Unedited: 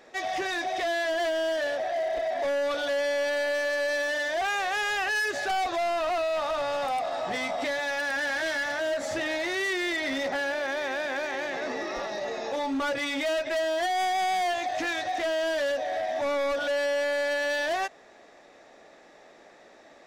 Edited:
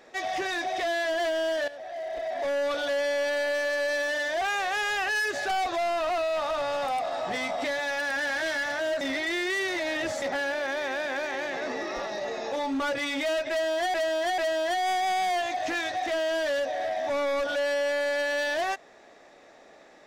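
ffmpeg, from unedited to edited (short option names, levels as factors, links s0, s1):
-filter_complex "[0:a]asplit=6[s0][s1][s2][s3][s4][s5];[s0]atrim=end=1.68,asetpts=PTS-STARTPTS,afade=t=out:st=1.676:d=0.004:c=hsin:silence=0.188365[s6];[s1]atrim=start=1.68:end=9.012,asetpts=PTS-STARTPTS,afade=t=in:d=0.92:silence=0.188365[s7];[s2]atrim=start=9.008:end=10.222,asetpts=PTS-STARTPTS,areverse[s8];[s3]atrim=start=10.218:end=13.942[s9];[s4]atrim=start=13.498:end=13.942[s10];[s5]atrim=start=13.498[s11];[s6][s7]concat=n=2:v=0:a=1[s12];[s12][s8]acrossfade=d=0.004:c1=hsin:c2=hsin[s13];[s13][s9]acrossfade=d=0.004:c1=hsin:c2=hsin[s14];[s14][s10]acrossfade=d=0.004:c1=hsin:c2=hsin[s15];[s15][s11]acrossfade=d=0.004:c1=hsin:c2=hsin"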